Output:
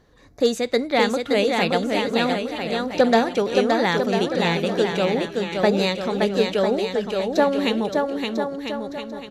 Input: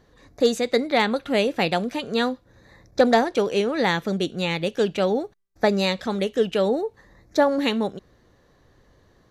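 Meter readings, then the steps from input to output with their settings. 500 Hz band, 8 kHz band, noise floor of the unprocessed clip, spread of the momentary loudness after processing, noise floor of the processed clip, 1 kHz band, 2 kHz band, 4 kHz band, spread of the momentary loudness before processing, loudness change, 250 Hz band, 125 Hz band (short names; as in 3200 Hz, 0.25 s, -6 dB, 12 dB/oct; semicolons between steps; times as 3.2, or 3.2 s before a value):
+2.0 dB, +2.0 dB, -59 dBFS, 6 LU, -41 dBFS, +2.0 dB, +2.0 dB, +2.0 dB, 7 LU, +1.5 dB, +2.0 dB, +2.0 dB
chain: bouncing-ball echo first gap 0.57 s, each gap 0.75×, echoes 5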